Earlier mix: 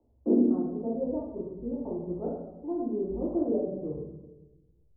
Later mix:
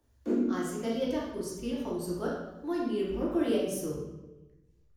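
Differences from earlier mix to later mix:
background −5.5 dB
master: remove Butterworth low-pass 840 Hz 36 dB per octave

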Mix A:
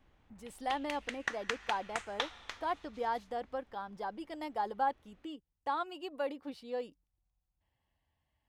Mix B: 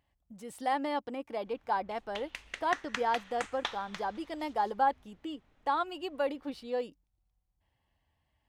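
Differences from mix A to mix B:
speech +4.5 dB
background: entry +1.45 s

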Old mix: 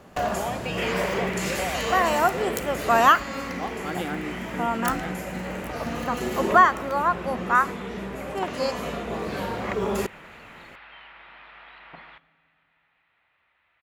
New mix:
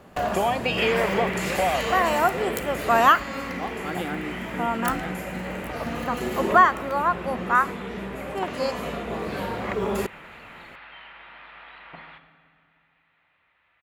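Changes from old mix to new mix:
speech +8.0 dB
second sound: send +10.0 dB
master: add parametric band 6,000 Hz −4.5 dB 0.64 octaves

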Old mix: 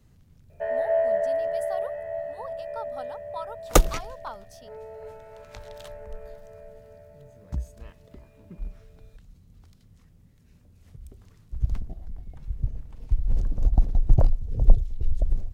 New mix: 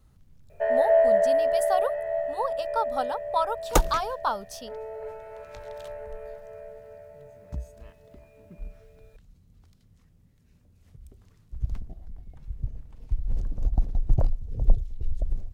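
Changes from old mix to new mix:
speech +11.0 dB
first sound +4.0 dB
second sound −4.0 dB

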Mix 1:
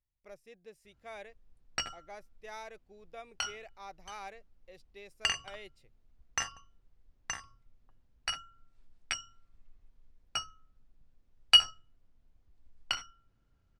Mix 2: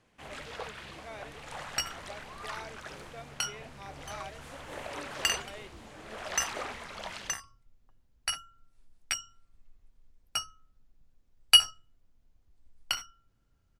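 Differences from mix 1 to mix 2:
first sound: unmuted
second sound: remove high-frequency loss of the air 82 metres

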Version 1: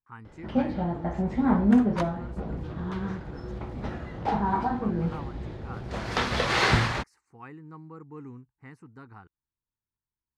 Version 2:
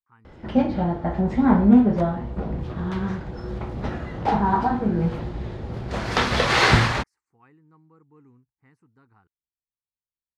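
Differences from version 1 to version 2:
speech −11.5 dB
first sound +5.5 dB
second sound −9.5 dB

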